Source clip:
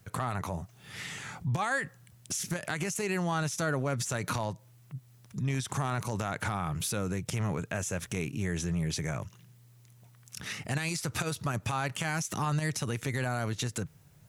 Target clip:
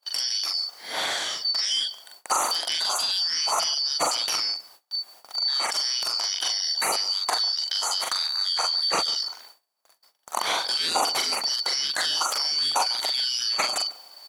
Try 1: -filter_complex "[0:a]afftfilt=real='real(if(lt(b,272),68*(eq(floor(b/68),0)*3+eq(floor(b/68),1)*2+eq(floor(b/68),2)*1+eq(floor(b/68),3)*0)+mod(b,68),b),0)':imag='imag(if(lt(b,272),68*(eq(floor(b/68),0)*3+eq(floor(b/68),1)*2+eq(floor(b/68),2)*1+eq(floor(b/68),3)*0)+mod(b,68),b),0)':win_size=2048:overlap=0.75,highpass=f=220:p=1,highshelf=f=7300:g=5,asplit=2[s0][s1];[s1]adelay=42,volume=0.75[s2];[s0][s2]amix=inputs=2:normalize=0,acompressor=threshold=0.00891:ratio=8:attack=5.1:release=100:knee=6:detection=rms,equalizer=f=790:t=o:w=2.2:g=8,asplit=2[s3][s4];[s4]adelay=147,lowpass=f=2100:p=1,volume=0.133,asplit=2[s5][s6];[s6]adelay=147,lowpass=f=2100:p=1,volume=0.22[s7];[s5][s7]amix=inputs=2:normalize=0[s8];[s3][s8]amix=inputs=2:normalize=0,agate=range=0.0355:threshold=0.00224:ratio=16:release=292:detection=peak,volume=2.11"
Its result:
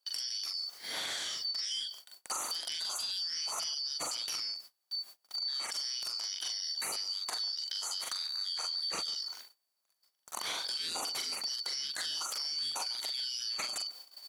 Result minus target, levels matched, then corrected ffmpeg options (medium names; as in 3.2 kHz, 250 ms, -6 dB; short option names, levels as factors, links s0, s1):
compression: peak gain reduction +9 dB; 1 kHz band -6.5 dB
-filter_complex "[0:a]afftfilt=real='real(if(lt(b,272),68*(eq(floor(b/68),0)*3+eq(floor(b/68),1)*2+eq(floor(b/68),2)*1+eq(floor(b/68),3)*0)+mod(b,68),b),0)':imag='imag(if(lt(b,272),68*(eq(floor(b/68),0)*3+eq(floor(b/68),1)*2+eq(floor(b/68),2)*1+eq(floor(b/68),3)*0)+mod(b,68),b),0)':win_size=2048:overlap=0.75,highpass=f=220:p=1,highshelf=f=7300:g=5,asplit=2[s0][s1];[s1]adelay=42,volume=0.75[s2];[s0][s2]amix=inputs=2:normalize=0,acompressor=threshold=0.0299:ratio=8:attack=5.1:release=100:knee=6:detection=rms,equalizer=f=790:t=o:w=2.2:g=18,asplit=2[s3][s4];[s4]adelay=147,lowpass=f=2100:p=1,volume=0.133,asplit=2[s5][s6];[s6]adelay=147,lowpass=f=2100:p=1,volume=0.22[s7];[s5][s7]amix=inputs=2:normalize=0[s8];[s3][s8]amix=inputs=2:normalize=0,agate=range=0.0355:threshold=0.00224:ratio=16:release=292:detection=peak,volume=2.11"